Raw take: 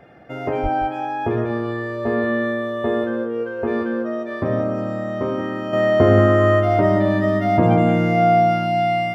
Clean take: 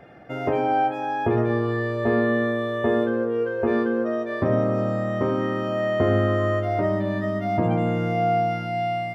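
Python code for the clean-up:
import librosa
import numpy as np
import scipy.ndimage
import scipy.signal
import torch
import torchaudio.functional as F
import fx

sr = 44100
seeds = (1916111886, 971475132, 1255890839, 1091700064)

y = fx.highpass(x, sr, hz=140.0, slope=24, at=(0.62, 0.74), fade=0.02)
y = fx.fix_echo_inverse(y, sr, delay_ms=177, level_db=-10.5)
y = fx.fix_level(y, sr, at_s=5.73, step_db=-6.5)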